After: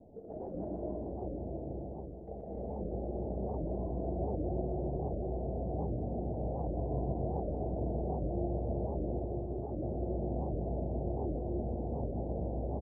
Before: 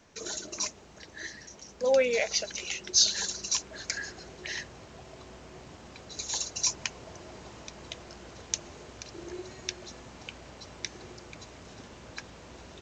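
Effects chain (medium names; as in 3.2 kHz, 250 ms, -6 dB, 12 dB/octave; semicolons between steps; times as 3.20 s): steep low-pass 770 Hz 72 dB/octave; compressor with a negative ratio -47 dBFS, ratio -0.5; reverse bouncing-ball echo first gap 120 ms, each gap 1.25×, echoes 5; gated-style reverb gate 350 ms rising, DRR -4 dB; warped record 78 rpm, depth 250 cents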